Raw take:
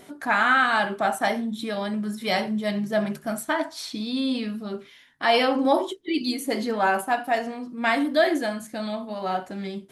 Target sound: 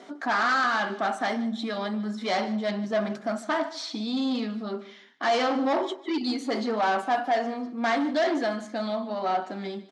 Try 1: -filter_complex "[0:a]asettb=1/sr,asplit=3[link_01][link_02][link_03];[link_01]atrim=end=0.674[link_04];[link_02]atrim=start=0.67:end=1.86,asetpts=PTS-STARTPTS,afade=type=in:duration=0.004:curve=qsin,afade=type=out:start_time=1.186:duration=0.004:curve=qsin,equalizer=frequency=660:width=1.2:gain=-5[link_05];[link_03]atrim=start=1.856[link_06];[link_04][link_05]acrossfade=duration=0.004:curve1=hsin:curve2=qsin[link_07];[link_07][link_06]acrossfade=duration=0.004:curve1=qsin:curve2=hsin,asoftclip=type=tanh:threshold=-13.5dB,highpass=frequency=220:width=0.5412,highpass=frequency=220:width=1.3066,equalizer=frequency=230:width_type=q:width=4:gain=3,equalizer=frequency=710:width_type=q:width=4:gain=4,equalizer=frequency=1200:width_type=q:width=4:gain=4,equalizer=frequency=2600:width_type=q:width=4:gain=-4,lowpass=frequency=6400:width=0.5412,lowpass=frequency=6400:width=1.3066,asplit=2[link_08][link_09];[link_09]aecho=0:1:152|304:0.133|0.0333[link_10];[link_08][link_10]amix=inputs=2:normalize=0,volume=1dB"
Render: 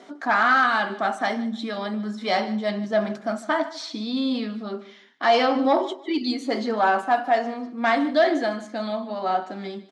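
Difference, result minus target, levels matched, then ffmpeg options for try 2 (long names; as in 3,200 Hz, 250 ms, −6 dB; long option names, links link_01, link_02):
soft clipping: distortion −11 dB
-filter_complex "[0:a]asettb=1/sr,asplit=3[link_01][link_02][link_03];[link_01]atrim=end=0.674[link_04];[link_02]atrim=start=0.67:end=1.86,asetpts=PTS-STARTPTS,afade=type=in:duration=0.004:curve=qsin,afade=type=out:start_time=1.186:duration=0.004:curve=qsin,equalizer=frequency=660:width=1.2:gain=-5[link_05];[link_03]atrim=start=1.856[link_06];[link_04][link_05]acrossfade=duration=0.004:curve1=hsin:curve2=qsin[link_07];[link_07][link_06]acrossfade=duration=0.004:curve1=qsin:curve2=hsin,asoftclip=type=tanh:threshold=-23.5dB,highpass=frequency=220:width=0.5412,highpass=frequency=220:width=1.3066,equalizer=frequency=230:width_type=q:width=4:gain=3,equalizer=frequency=710:width_type=q:width=4:gain=4,equalizer=frequency=1200:width_type=q:width=4:gain=4,equalizer=frequency=2600:width_type=q:width=4:gain=-4,lowpass=frequency=6400:width=0.5412,lowpass=frequency=6400:width=1.3066,asplit=2[link_08][link_09];[link_09]aecho=0:1:152|304:0.133|0.0333[link_10];[link_08][link_10]amix=inputs=2:normalize=0,volume=1dB"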